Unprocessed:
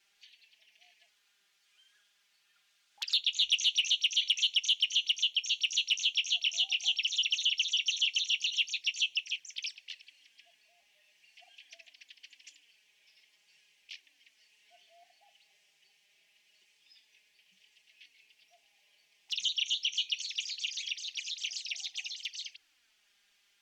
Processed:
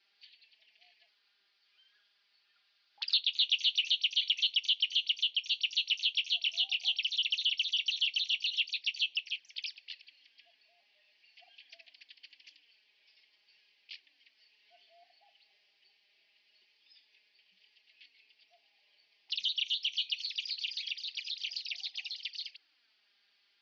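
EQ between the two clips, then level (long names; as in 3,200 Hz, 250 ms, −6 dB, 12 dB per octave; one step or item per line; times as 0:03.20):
Chebyshev high-pass filter 270 Hz, order 2
low-pass with resonance 4,700 Hz, resonance Q 5.8
high-frequency loss of the air 260 metres
0.0 dB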